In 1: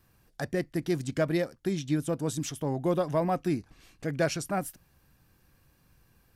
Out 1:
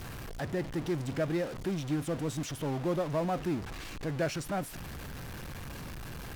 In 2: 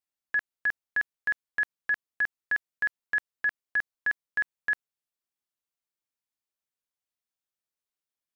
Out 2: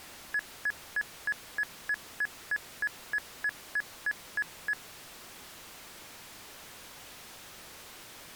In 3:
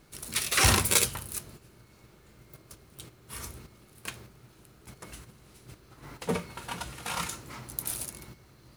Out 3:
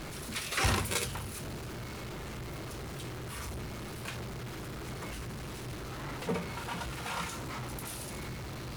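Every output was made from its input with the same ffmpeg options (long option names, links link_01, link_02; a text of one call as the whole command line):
ffmpeg -i in.wav -af "aeval=exprs='val(0)+0.5*0.0398*sgn(val(0))':channel_layout=same,acrusher=bits=5:mode=log:mix=0:aa=0.000001,aemphasis=mode=reproduction:type=cd,volume=-6.5dB" out.wav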